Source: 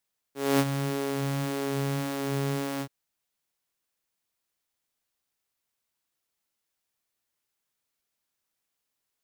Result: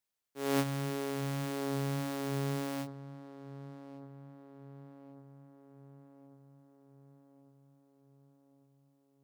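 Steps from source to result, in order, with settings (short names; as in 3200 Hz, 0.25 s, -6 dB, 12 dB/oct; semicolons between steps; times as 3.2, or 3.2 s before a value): darkening echo 1.147 s, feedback 62%, low-pass 1800 Hz, level -15 dB; gain -6 dB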